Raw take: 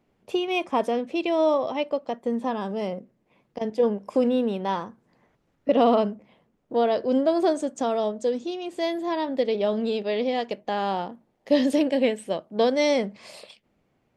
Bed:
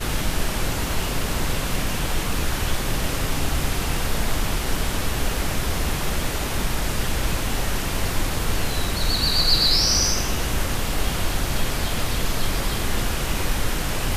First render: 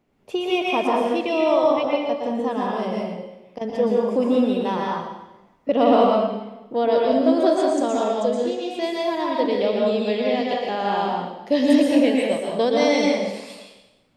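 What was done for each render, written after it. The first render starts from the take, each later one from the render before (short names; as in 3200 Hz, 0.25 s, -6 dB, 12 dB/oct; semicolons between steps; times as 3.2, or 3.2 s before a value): plate-style reverb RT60 1 s, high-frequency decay 0.95×, pre-delay 0.105 s, DRR -3 dB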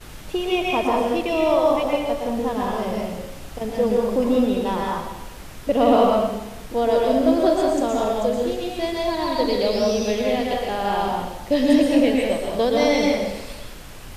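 add bed -15 dB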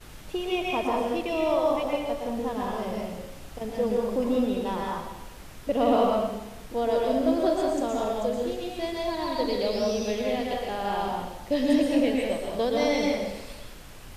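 gain -6 dB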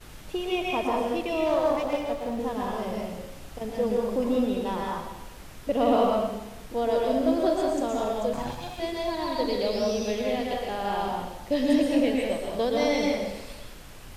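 1.46–2.4 running maximum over 5 samples; 8.33–8.8 minimum comb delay 1.2 ms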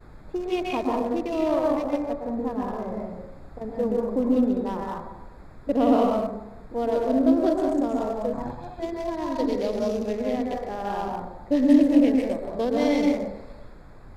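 Wiener smoothing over 15 samples; dynamic EQ 280 Hz, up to +7 dB, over -39 dBFS, Q 2.7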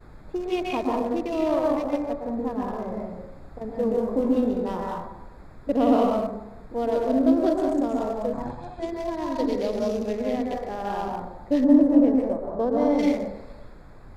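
3.84–5.06 flutter echo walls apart 3.8 m, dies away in 0.23 s; 8.48–8.88 careless resampling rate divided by 2×, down none, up filtered; 11.64–12.99 resonant high shelf 1700 Hz -12.5 dB, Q 1.5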